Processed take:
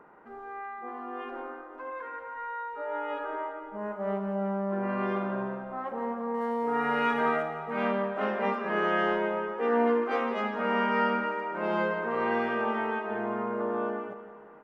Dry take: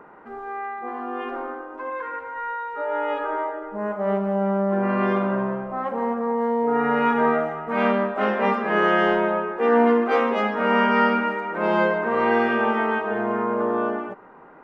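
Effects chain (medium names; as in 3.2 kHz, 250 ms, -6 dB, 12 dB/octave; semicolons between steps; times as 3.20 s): 6.34–7.43 s: treble shelf 2.1 kHz +11.5 dB; on a send: feedback delay 172 ms, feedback 59%, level -13 dB; on the sum: trim -8 dB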